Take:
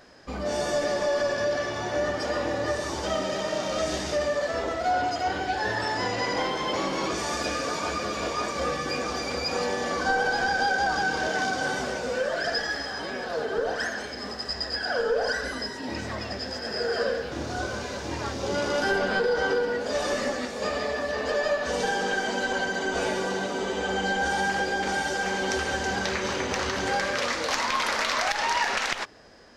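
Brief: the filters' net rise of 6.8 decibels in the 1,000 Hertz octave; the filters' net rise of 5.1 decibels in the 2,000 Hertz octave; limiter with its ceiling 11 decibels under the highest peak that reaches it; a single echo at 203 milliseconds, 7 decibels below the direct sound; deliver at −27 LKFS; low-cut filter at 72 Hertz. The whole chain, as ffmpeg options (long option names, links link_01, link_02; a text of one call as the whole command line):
ffmpeg -i in.wav -af "highpass=72,equalizer=frequency=1000:width_type=o:gain=8.5,equalizer=frequency=2000:width_type=o:gain=3,alimiter=limit=-18.5dB:level=0:latency=1,aecho=1:1:203:0.447,volume=-1dB" out.wav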